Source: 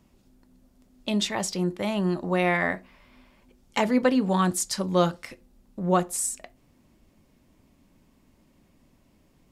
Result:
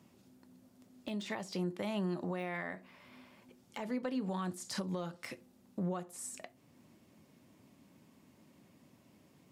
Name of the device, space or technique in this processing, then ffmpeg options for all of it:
podcast mastering chain: -af "highpass=f=100:w=0.5412,highpass=f=100:w=1.3066,deesser=0.85,acompressor=threshold=0.0355:ratio=4,alimiter=level_in=1.41:limit=0.0631:level=0:latency=1:release=374,volume=0.708" -ar 48000 -c:a libmp3lame -b:a 96k

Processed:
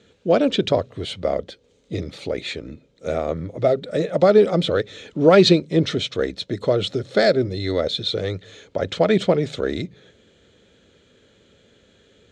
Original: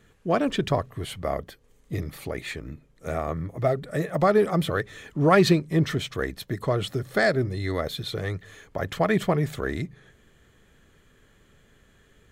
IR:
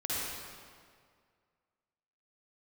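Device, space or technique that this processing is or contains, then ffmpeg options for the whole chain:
car door speaker: -af "highpass=100,equalizer=f=140:t=q:w=4:g=-9,equalizer=f=520:t=q:w=4:g=6,equalizer=f=770:t=q:w=4:g=-4,equalizer=f=1100:t=q:w=4:g=-10,equalizer=f=1800:t=q:w=4:g=-8,equalizer=f=3800:t=q:w=4:g=7,lowpass=f=7200:w=0.5412,lowpass=f=7200:w=1.3066,highshelf=f=12000:g=-6,volume=1.88"

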